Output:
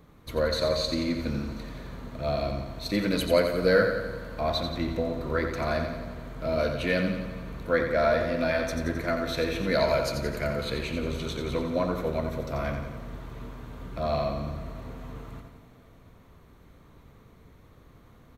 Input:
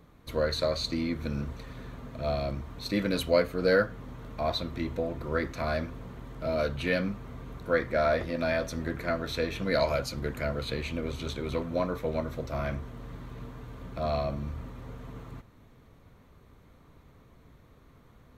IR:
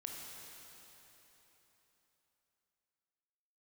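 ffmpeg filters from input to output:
-filter_complex "[0:a]aecho=1:1:88|176|264|352|440|528|616:0.447|0.255|0.145|0.0827|0.0472|0.0269|0.0153,asplit=2[s0][s1];[1:a]atrim=start_sample=2205,highshelf=f=9500:g=9[s2];[s1][s2]afir=irnorm=-1:irlink=0,volume=0.316[s3];[s0][s3]amix=inputs=2:normalize=0"

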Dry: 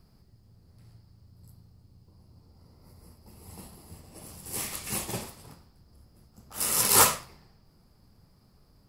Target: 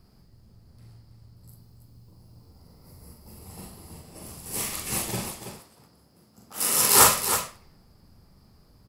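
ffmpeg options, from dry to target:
-filter_complex "[0:a]asettb=1/sr,asplit=3[s0][s1][s2];[s0]atrim=end=1.484[s3];[s1]atrim=start=1.48:end=3.39,asetpts=PTS-STARTPTS,afade=t=in:d=0.004:c=qsin,afade=t=out:st=1.906:d=0.004:c=qsin,highshelf=f=8700:g=7.5[s4];[s2]atrim=start=3.386[s5];[s3][s4]acrossfade=d=0.004:c1=hsin:c2=qsin[s6];[s6][s5]acrossfade=d=0.004:c1=qsin:c2=hsin,asettb=1/sr,asplit=3[s7][s8][s9];[s7]atrim=end=5.274[s10];[s8]atrim=start=5.27:end=7,asetpts=PTS-STARTPTS,afade=t=in:d=0.004:c=qsin,afade=t=out:st=1.726:d=0.004:c=qsin,highpass=150[s11];[s9]atrim=start=6.996[s12];[s10][s11]acrossfade=d=0.004:c1=hsin:c2=qsin[s13];[s13][s12]acrossfade=d=0.004:c1=qsin:c2=hsin,aecho=1:1:42|326:0.668|0.398,volume=1.26"

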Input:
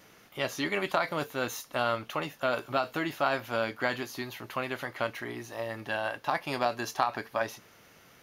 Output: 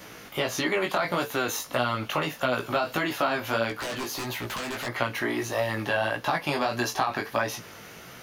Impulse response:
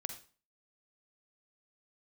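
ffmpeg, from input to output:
-filter_complex "[0:a]asplit=2[s0][s1];[s1]alimiter=limit=0.075:level=0:latency=1:release=108,volume=1.41[s2];[s0][s2]amix=inputs=2:normalize=0,acrossover=split=360|1300[s3][s4][s5];[s3]acompressor=threshold=0.0141:ratio=4[s6];[s4]acompressor=threshold=0.0251:ratio=4[s7];[s5]acompressor=threshold=0.02:ratio=4[s8];[s6][s7][s8]amix=inputs=3:normalize=0,asettb=1/sr,asplit=3[s9][s10][s11];[s9]atrim=end=3.694[s12];[s10]atrim=start=3.69:end=4.87,asetpts=PTS-STARTPTS,afade=t=in:d=0.004:c=qsin,afade=t=out:st=1.176:d=0.004:c=qsin,aeval=exprs='0.0266*(abs(mod(val(0)/0.0266+3,4)-2)-1)':c=same[s13];[s11]atrim=start=4.866[s14];[s12][s13]acrossfade=d=0.004:c1=hsin:c2=qsin[s15];[s15][s14]acrossfade=d=0.004:c1=qsin:c2=hsin,flanger=delay=16:depth=4.3:speed=1.6,volume=2.37"

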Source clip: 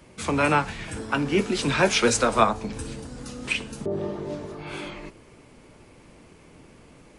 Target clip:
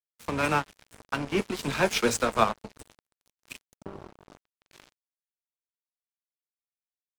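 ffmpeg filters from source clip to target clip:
-filter_complex "[0:a]asettb=1/sr,asplit=3[s0][s1][s2];[s0]atrim=end=3.254[s3];[s1]atrim=start=3.25:end=4.71,asetpts=PTS-STARTPTS,afade=t=in:d=0.004:c=qsin,afade=t=out:st=1.456:d=0.004:c=qsin,acrossover=split=470|3000[s4][s5][s6];[s5]acompressor=threshold=0.00447:ratio=3[s7];[s4][s7][s6]amix=inputs=3:normalize=0[s8];[s2]atrim=start=4.706[s9];[s3][s8]acrossfade=d=0.004:c1=hsin:c2=qsin[s10];[s10][s9]acrossfade=d=0.004:c1=qsin:c2=hsin,aeval=exprs='sgn(val(0))*max(abs(val(0))-0.0376,0)':c=same,volume=0.794"

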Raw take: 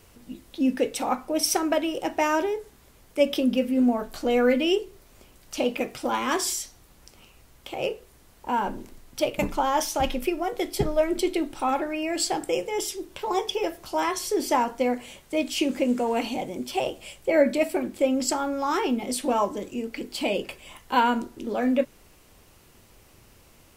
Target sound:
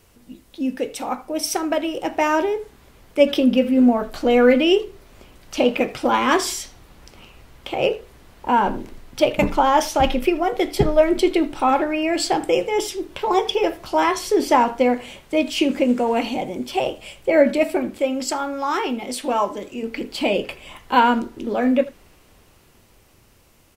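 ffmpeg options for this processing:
-filter_complex "[0:a]asettb=1/sr,asplit=3[s0][s1][s2];[s0]atrim=end=17.984[s3];[s1]atrim=start=17.98:end=19.83,asetpts=PTS-STARTPTS,afade=t=in:d=0.004:c=qsin,afade=t=out:st=1.846:d=0.004:c=qsin,lowshelf=f=480:g=-7[s4];[s2]atrim=start=19.826[s5];[s3][s4]acrossfade=d=0.004:c1=hsin:c2=qsin[s6];[s6][s5]acrossfade=d=0.004:c1=qsin:c2=hsin,acrossover=split=4400[s7][s8];[s7]dynaudnorm=f=380:g=11:m=3.55[s9];[s9][s8]amix=inputs=2:normalize=0,asplit=2[s10][s11];[s11]adelay=80,highpass=300,lowpass=3400,asoftclip=type=hard:threshold=0.282,volume=0.141[s12];[s10][s12]amix=inputs=2:normalize=0,volume=0.891"

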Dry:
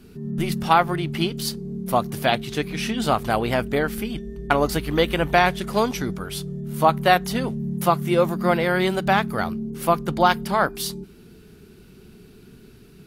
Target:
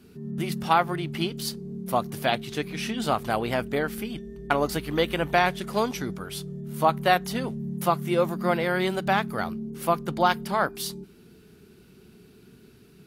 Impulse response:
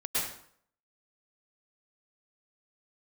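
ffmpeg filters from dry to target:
-af "highpass=f=88:p=1,volume=0.631"

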